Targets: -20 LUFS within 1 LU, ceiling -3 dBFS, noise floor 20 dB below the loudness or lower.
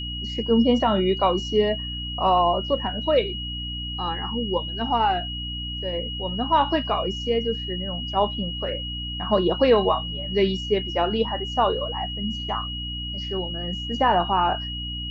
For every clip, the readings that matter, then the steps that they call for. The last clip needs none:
hum 60 Hz; harmonics up to 300 Hz; hum level -31 dBFS; steady tone 2900 Hz; tone level -31 dBFS; loudness -24.0 LUFS; peak -7.5 dBFS; loudness target -20.0 LUFS
-> de-hum 60 Hz, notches 5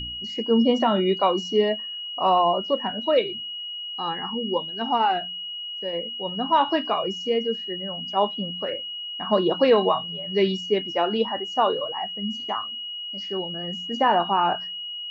hum none; steady tone 2900 Hz; tone level -31 dBFS
-> notch 2900 Hz, Q 30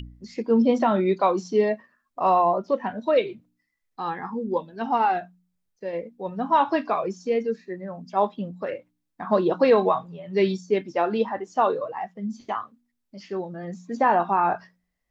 steady tone none; loudness -24.5 LUFS; peak -8.0 dBFS; loudness target -20.0 LUFS
-> gain +4.5 dB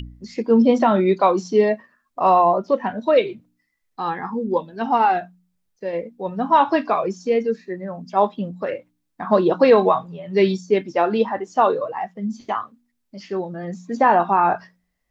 loudness -20.0 LUFS; peak -3.5 dBFS; noise floor -73 dBFS

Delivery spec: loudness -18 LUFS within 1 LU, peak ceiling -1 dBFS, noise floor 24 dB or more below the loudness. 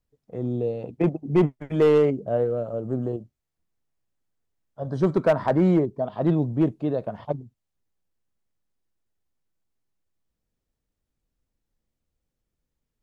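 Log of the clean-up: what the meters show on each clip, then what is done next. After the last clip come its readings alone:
clipped 0.4%; flat tops at -12.5 dBFS; loudness -24.0 LUFS; peak -12.5 dBFS; loudness target -18.0 LUFS
-> clip repair -12.5 dBFS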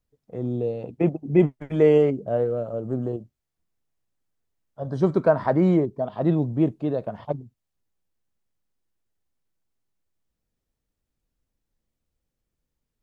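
clipped 0.0%; loudness -23.5 LUFS; peak -5.5 dBFS; loudness target -18.0 LUFS
-> gain +5.5 dB; limiter -1 dBFS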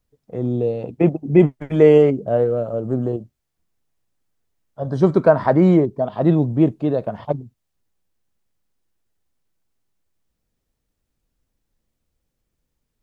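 loudness -18.0 LUFS; peak -1.0 dBFS; noise floor -77 dBFS

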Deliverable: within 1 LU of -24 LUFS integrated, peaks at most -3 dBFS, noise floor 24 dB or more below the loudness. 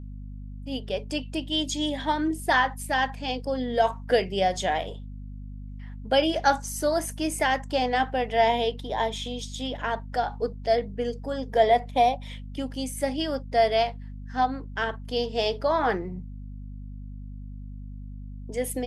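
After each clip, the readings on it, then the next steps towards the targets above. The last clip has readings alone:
hum 50 Hz; harmonics up to 250 Hz; hum level -36 dBFS; loudness -26.5 LUFS; peak -8.5 dBFS; loudness target -24.0 LUFS
-> notches 50/100/150/200/250 Hz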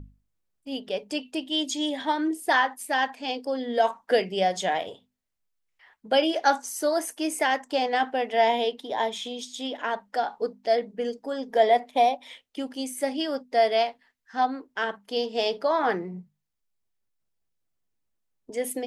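hum none; loudness -26.5 LUFS; peak -8.5 dBFS; loudness target -24.0 LUFS
-> gain +2.5 dB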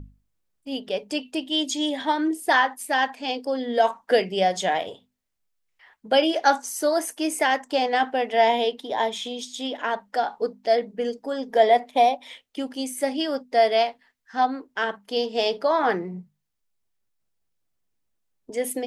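loudness -24.0 LUFS; peak -6.0 dBFS; noise floor -74 dBFS

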